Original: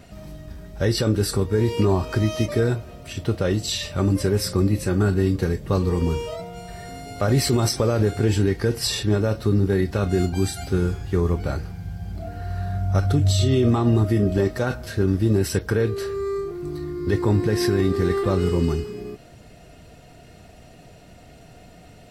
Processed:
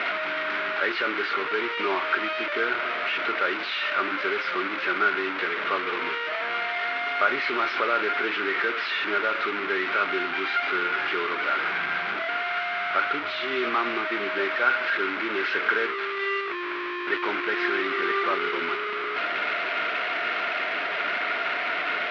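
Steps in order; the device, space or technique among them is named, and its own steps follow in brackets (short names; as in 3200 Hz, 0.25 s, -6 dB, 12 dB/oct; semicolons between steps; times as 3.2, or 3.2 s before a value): digital answering machine (BPF 380–3300 Hz; delta modulation 32 kbps, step -24 dBFS; speaker cabinet 470–3300 Hz, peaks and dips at 510 Hz -9 dB, 790 Hz -7 dB, 1400 Hz +10 dB, 2200 Hz +7 dB); gain +2.5 dB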